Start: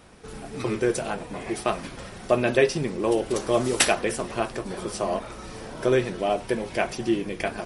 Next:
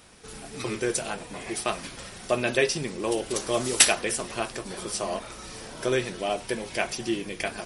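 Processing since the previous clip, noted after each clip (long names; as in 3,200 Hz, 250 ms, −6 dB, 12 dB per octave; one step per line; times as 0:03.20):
high-shelf EQ 2,200 Hz +11 dB
level −5 dB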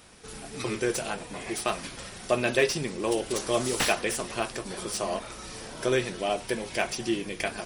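slew-rate limiting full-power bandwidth 270 Hz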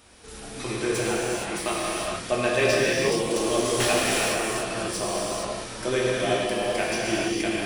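reverb whose tail is shaped and stops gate 490 ms flat, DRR −6 dB
level −2.5 dB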